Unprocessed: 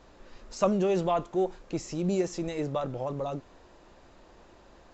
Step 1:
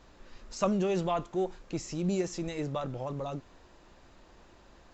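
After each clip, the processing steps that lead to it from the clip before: peaking EQ 540 Hz -4.5 dB 1.9 oct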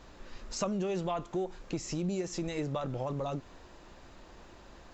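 compression 4:1, threshold -35 dBFS, peak gain reduction 10.5 dB; trim +4 dB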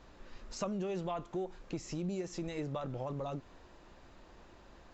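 treble shelf 5.8 kHz -6 dB; trim -4 dB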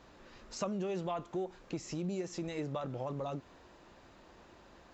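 high-pass 94 Hz 6 dB/octave; trim +1 dB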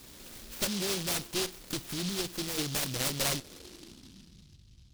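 low-pass sweep 3 kHz -> 110 Hz, 2.22–4.64 s; one-sided clip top -41.5 dBFS; delay time shaken by noise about 4.1 kHz, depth 0.38 ms; trim +6.5 dB

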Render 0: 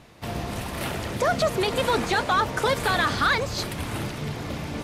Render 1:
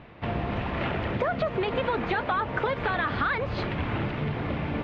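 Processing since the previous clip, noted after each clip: low-pass 2.9 kHz 24 dB/octave; compression 5:1, threshold -27 dBFS, peak gain reduction 9 dB; trim +3 dB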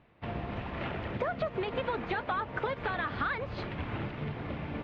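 upward expansion 1.5:1, over -44 dBFS; trim -4.5 dB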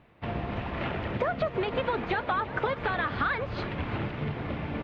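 delay 346 ms -17 dB; trim +4 dB

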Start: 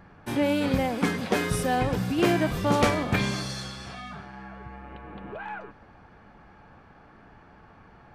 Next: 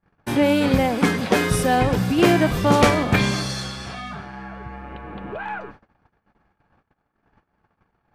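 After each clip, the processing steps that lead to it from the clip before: gate -48 dBFS, range -35 dB; trim +6.5 dB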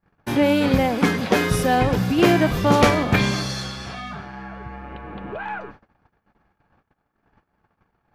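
peaking EQ 8.6 kHz -6.5 dB 0.3 oct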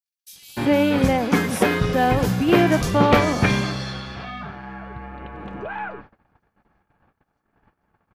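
bands offset in time highs, lows 300 ms, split 4.6 kHz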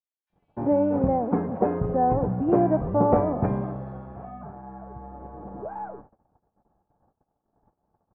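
four-pole ladder low-pass 960 Hz, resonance 35%; trim +2 dB

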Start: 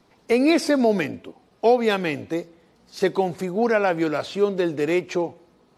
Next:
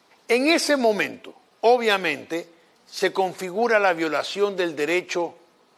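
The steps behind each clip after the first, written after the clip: high-pass 840 Hz 6 dB/octave; trim +5.5 dB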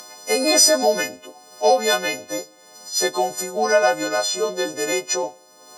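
partials quantised in pitch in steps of 3 st; fifteen-band graphic EQ 630 Hz +6 dB, 2.5 kHz -9 dB, 6.3 kHz +8 dB; upward compressor, threshold -29 dBFS; trim -2 dB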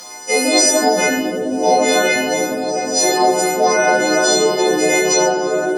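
peak limiter -12 dBFS, peak gain reduction 9 dB; delay with an opening low-pass 352 ms, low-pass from 200 Hz, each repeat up 1 oct, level 0 dB; reverberation RT60 1.1 s, pre-delay 3 ms, DRR -8.5 dB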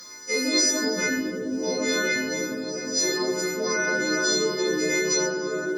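static phaser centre 2.8 kHz, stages 6; trim -5.5 dB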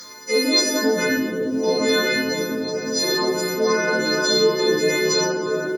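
doubling 18 ms -3 dB; trim +5 dB

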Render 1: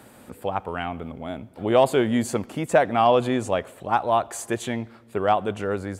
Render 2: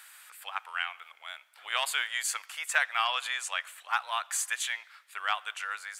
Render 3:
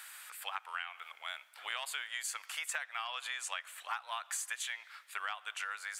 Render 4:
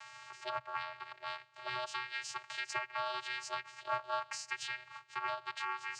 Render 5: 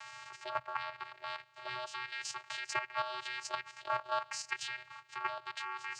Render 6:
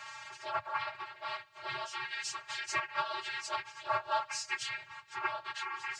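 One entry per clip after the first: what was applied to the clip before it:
high-pass 1.4 kHz 24 dB/octave; trim +3.5 dB
compression 12:1, threshold -37 dBFS, peak gain reduction 17 dB; trim +2 dB
waveshaping leveller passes 1; vocoder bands 8, square 125 Hz; trim -1.5 dB
level held to a coarse grid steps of 9 dB; trim +4.5 dB
phase randomisation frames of 50 ms; trim +2.5 dB

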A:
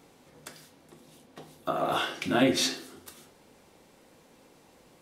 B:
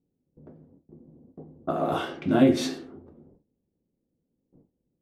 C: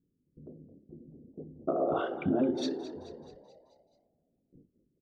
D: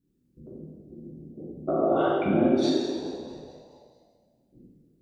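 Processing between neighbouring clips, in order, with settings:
gate with hold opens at -45 dBFS; level-controlled noise filter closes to 320 Hz, open at -25.5 dBFS; tilt shelf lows +7.5 dB, about 840 Hz
resonances exaggerated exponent 2; compression, threshold -25 dBFS, peak gain reduction 11.5 dB; frequency-shifting echo 216 ms, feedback 55%, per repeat +53 Hz, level -14 dB
plate-style reverb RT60 1.4 s, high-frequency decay 1×, DRR -6.5 dB

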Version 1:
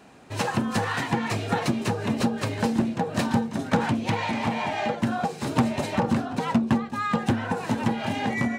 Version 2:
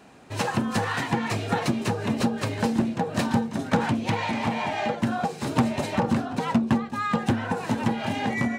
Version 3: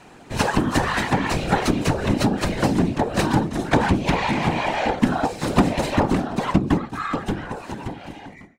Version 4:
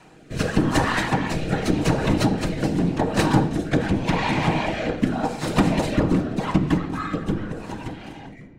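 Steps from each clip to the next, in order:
no audible change
fade out at the end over 2.69 s; whisper effect; trim +5 dB
on a send at -7 dB: reverberation RT60 1.9 s, pre-delay 6 ms; on the sum: rotary cabinet horn 0.85 Hz

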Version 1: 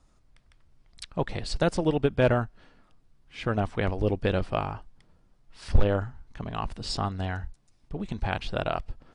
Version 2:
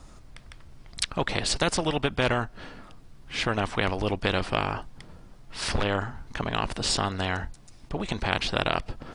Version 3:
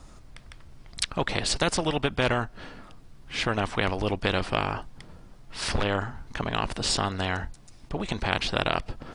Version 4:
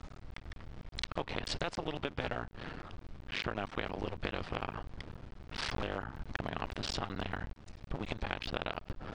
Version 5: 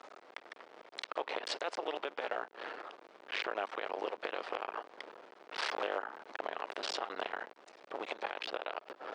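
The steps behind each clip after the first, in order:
in parallel at -1.5 dB: compression, threshold -34 dBFS, peak gain reduction 19 dB; on the sum: spectrum-flattening compressor 2:1; trim +4 dB
no audible change
cycle switcher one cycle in 2, muted; low-pass 4.2 kHz 12 dB/octave; compression 4:1, threshold -36 dBFS, peak gain reduction 13.5 dB; trim +2 dB
high-pass 420 Hz 24 dB/octave; treble shelf 2.6 kHz -8 dB; peak limiter -28 dBFS, peak gain reduction 10 dB; trim +5.5 dB

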